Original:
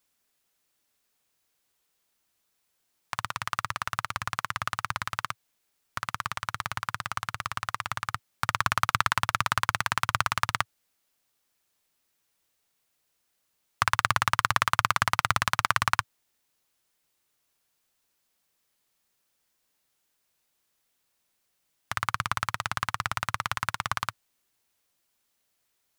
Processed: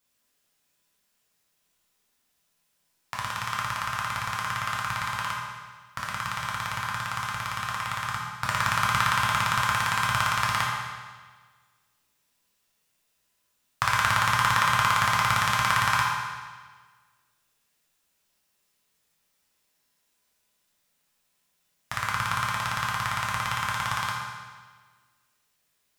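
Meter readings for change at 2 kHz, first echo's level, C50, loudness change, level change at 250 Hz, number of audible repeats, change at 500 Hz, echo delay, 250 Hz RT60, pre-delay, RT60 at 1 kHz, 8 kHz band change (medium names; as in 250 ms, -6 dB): +3.0 dB, no echo, 0.0 dB, +2.5 dB, +4.0 dB, no echo, +1.5 dB, no echo, 1.5 s, 5 ms, 1.5 s, +3.0 dB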